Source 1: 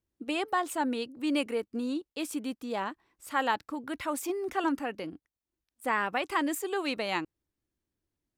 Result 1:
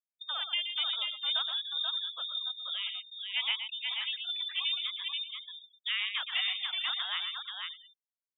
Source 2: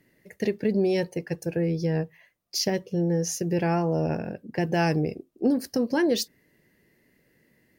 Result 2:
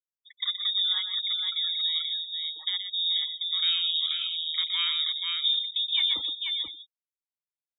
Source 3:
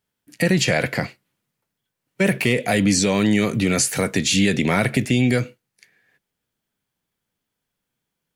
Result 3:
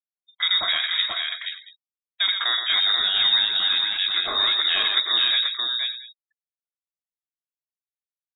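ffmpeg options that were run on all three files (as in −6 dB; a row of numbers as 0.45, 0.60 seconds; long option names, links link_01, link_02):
-af "aecho=1:1:122|484|578|685:0.447|0.631|0.158|0.112,lowpass=frequency=3300:width_type=q:width=0.5098,lowpass=frequency=3300:width_type=q:width=0.6013,lowpass=frequency=3300:width_type=q:width=0.9,lowpass=frequency=3300:width_type=q:width=2.563,afreqshift=-3900,afftfilt=real='re*gte(hypot(re,im),0.0158)':imag='im*gte(hypot(re,im),0.0158)':win_size=1024:overlap=0.75,volume=-4.5dB"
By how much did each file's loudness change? 0.0, +1.0, −0.5 LU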